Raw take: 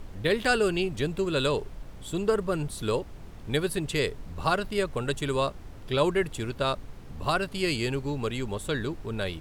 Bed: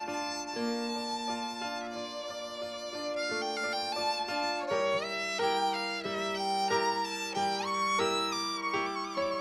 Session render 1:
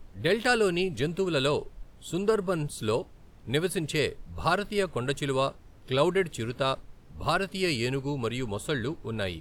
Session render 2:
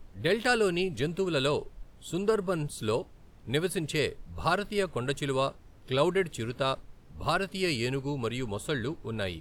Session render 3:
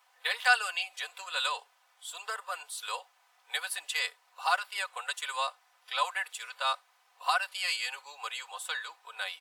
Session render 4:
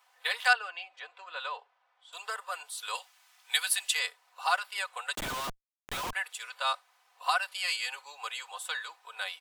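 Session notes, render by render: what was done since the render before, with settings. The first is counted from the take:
noise print and reduce 9 dB
gain -1.5 dB
steep high-pass 750 Hz 36 dB/oct; comb 4 ms, depth 77%
0.53–2.13 tape spacing loss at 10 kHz 30 dB; 2.95–3.95 tilt shelf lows -9 dB, about 1200 Hz; 5.15–6.13 Schmitt trigger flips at -40 dBFS

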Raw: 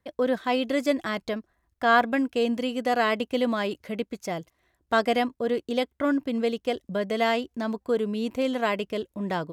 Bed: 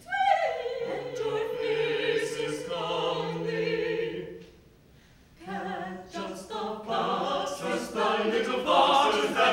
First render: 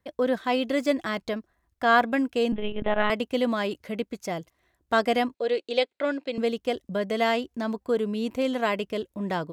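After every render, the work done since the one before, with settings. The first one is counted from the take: 0.6–1.25 median filter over 3 samples; 2.52–3.1 monotone LPC vocoder at 8 kHz 210 Hz; 5.34–6.38 speaker cabinet 410–8100 Hz, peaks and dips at 520 Hz +5 dB, 1100 Hz -6 dB, 2500 Hz +7 dB, 4100 Hz +10 dB, 6000 Hz -6 dB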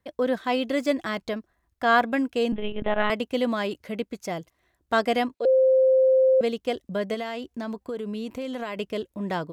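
5.45–6.41 bleep 523 Hz -15 dBFS; 7.14–8.77 compressor, threshold -28 dBFS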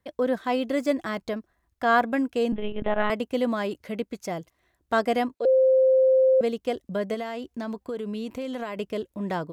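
dynamic EQ 3300 Hz, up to -5 dB, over -42 dBFS, Q 0.81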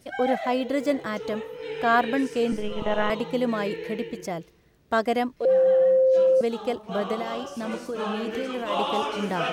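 add bed -5.5 dB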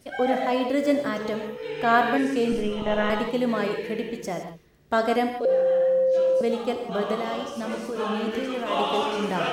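non-linear reverb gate 0.19 s flat, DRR 4.5 dB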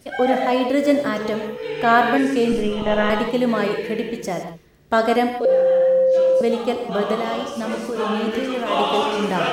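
gain +5 dB; limiter -3 dBFS, peak gain reduction 1.5 dB

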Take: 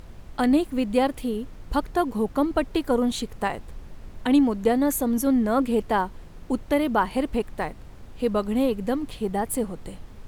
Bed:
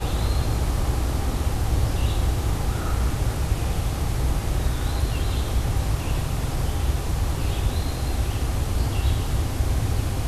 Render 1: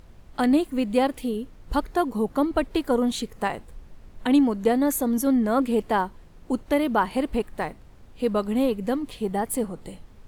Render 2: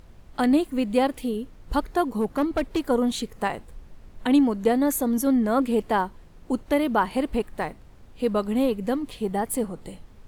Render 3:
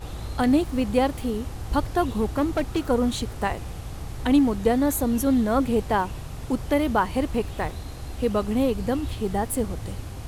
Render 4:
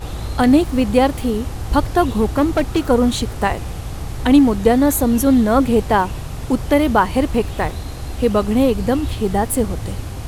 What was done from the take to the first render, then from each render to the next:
noise print and reduce 6 dB
2.05–2.8 hard clip -18 dBFS
add bed -10.5 dB
gain +7.5 dB; limiter -1 dBFS, peak gain reduction 1 dB

